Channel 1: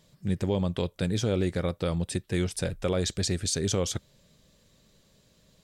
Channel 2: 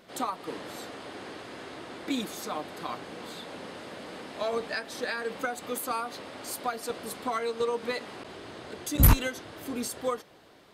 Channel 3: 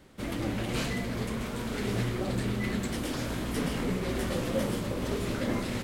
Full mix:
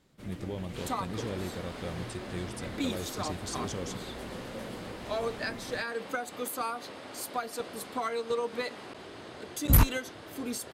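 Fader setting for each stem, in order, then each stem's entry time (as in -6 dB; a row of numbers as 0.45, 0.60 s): -10.5, -2.0, -12.5 dB; 0.00, 0.70, 0.00 s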